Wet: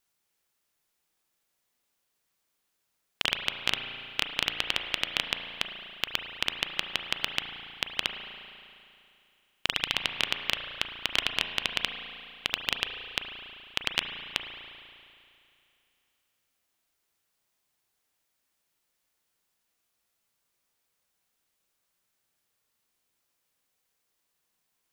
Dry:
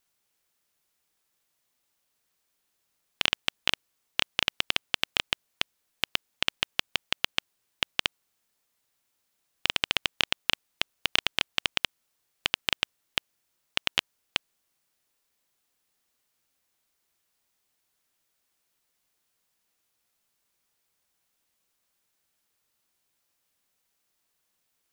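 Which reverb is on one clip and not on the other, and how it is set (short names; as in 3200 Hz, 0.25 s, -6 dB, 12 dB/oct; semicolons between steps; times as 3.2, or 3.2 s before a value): spring tank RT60 2.6 s, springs 35 ms, chirp 75 ms, DRR 5 dB; gain -2 dB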